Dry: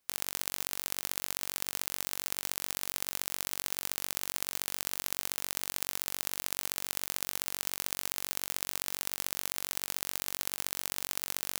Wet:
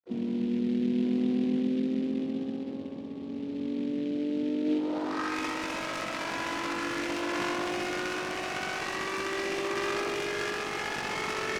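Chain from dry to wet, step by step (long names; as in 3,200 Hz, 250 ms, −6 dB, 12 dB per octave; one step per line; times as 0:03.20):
vocoder with a gliding carrier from A#3, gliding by +11 semitones
spectral peaks only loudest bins 64
in parallel at −2.5 dB: brickwall limiter −37.5 dBFS, peak gain reduction 10 dB
on the sum: comparator with hysteresis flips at −47 dBFS
bit reduction 11 bits
high-pass filter 180 Hz 12 dB per octave
double-tracking delay 20 ms −4 dB
low-pass filter sweep 250 Hz → 2,600 Hz, 0:04.64–0:05.41
pitch-shifted copies added −3 semitones −8 dB, +7 semitones −10 dB, +12 semitones −17 dB
short delay modulated by noise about 2,600 Hz, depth 0.031 ms
level +4 dB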